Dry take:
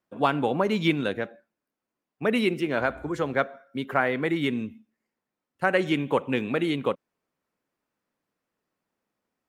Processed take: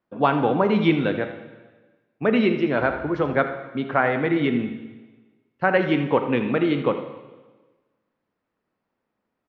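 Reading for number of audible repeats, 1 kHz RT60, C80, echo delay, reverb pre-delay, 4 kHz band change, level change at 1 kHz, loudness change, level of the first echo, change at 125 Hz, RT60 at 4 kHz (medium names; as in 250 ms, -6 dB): 1, 1.3 s, 9.0 dB, 80 ms, 8 ms, -0.5 dB, +4.5 dB, +4.0 dB, -13.0 dB, +5.0 dB, 1.2 s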